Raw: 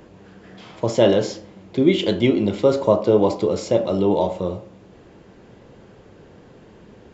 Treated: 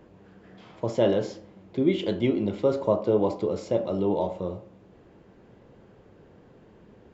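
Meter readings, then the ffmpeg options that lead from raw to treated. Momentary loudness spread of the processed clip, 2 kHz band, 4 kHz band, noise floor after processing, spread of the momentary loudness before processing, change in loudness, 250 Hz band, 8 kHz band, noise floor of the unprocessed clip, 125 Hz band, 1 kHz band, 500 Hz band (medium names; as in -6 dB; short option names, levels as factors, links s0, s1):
12 LU, -9.0 dB, -11.0 dB, -55 dBFS, 12 LU, -7.0 dB, -6.5 dB, no reading, -48 dBFS, -6.5 dB, -7.0 dB, -6.5 dB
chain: -af "highshelf=f=3000:g=-8,volume=0.473"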